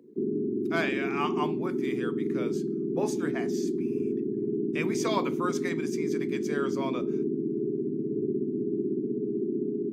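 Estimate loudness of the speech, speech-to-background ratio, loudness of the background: −35.0 LKFS, −5.0 dB, −30.0 LKFS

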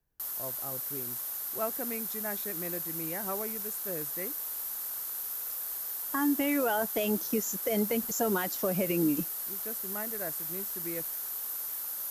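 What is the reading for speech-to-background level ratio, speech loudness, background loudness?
0.0 dB, −33.5 LKFS, −33.5 LKFS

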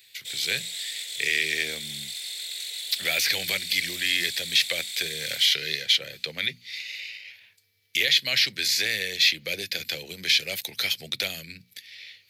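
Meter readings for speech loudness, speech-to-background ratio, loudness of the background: −24.5 LKFS, 8.0 dB, −32.5 LKFS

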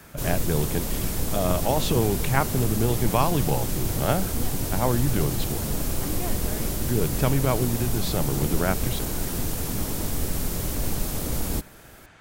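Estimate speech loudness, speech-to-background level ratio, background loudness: −27.5 LKFS, 1.0 dB, −28.5 LKFS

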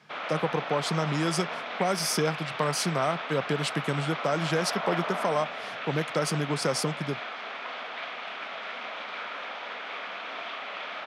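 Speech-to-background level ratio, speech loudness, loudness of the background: 5.0 dB, −29.5 LKFS, −34.5 LKFS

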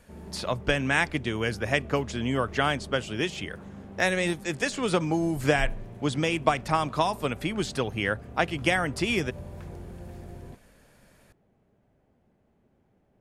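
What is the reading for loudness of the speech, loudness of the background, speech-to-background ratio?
−27.5 LKFS, −44.0 LKFS, 16.5 dB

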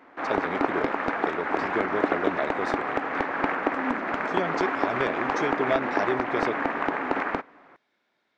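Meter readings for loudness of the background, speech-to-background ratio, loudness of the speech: −27.5 LKFS, −4.5 dB, −32.0 LKFS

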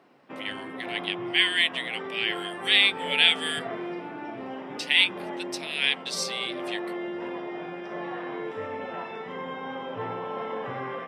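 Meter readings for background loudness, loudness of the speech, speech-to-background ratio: −35.5 LKFS, −24.0 LKFS, 11.5 dB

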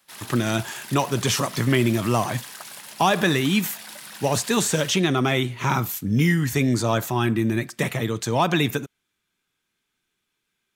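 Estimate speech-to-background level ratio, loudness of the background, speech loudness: 15.0 dB, −37.5 LKFS, −22.5 LKFS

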